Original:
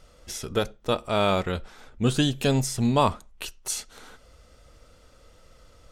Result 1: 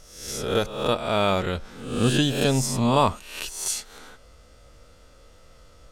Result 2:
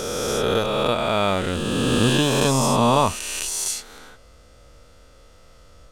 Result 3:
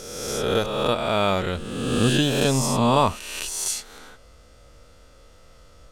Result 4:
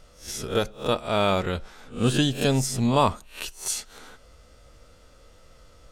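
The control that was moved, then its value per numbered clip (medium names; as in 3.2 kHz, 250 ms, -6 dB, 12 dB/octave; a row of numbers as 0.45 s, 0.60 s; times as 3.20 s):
reverse spectral sustain, rising 60 dB in: 0.71 s, 3.2 s, 1.5 s, 0.32 s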